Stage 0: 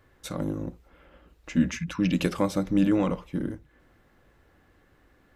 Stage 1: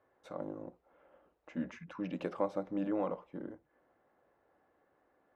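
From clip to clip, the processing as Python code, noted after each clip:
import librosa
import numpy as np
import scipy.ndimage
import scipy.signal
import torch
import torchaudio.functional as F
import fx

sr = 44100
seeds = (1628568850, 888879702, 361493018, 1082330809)

y = fx.bandpass_q(x, sr, hz=690.0, q=1.4)
y = y * librosa.db_to_amplitude(-3.5)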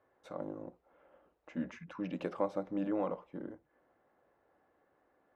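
y = x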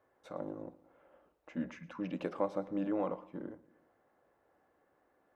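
y = fx.echo_feedback(x, sr, ms=114, feedback_pct=53, wet_db=-20.5)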